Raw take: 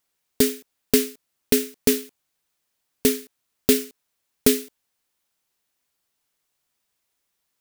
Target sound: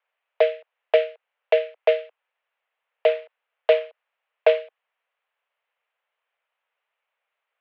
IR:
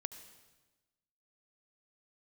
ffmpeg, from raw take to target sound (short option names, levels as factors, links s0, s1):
-filter_complex "[0:a]asettb=1/sr,asplit=3[s0][s1][s2];[s0]atrim=end=3.084[s3];[s1]atrim=start=3.08:end=4.61,asetpts=PTS-STARTPTS,afade=t=in:d=0.004:c=qsin,afade=t=out:st=1.526:d=0.004:c=qsin,acrusher=bits=3:mode=log:mix=0:aa=0.000001[s4];[s2]atrim=start=4.606[s5];[s3][s4]acrossfade=d=0.004:c1=hsin:c2=qsin[s6];[s6][s5]acrossfade=d=0.004:c1=qsin:c2=hsin,highpass=f=270:t=q:w=0.5412,highpass=f=270:t=q:w=1.307,lowpass=f=2700:t=q:w=0.5176,lowpass=f=2700:t=q:w=0.7071,lowpass=f=2700:t=q:w=1.932,afreqshift=210,volume=1.5"